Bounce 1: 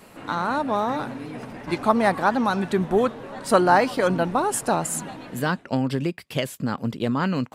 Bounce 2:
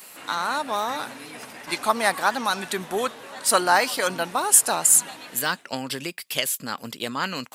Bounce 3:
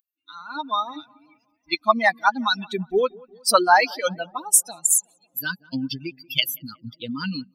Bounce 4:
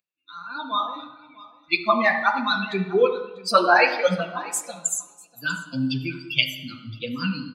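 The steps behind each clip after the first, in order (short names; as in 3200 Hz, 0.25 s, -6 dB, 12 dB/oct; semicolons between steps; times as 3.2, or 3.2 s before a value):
tilt +4.5 dB/oct; gain -1 dB
per-bin expansion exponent 3; darkening echo 0.183 s, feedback 67%, low-pass 960 Hz, level -23 dB; AGC gain up to 13.5 dB; gain -1 dB
flange 1.7 Hz, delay 5.2 ms, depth 9.5 ms, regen +51%; echo 0.644 s -21 dB; reverb RT60 0.85 s, pre-delay 3 ms, DRR 5 dB; gain -4 dB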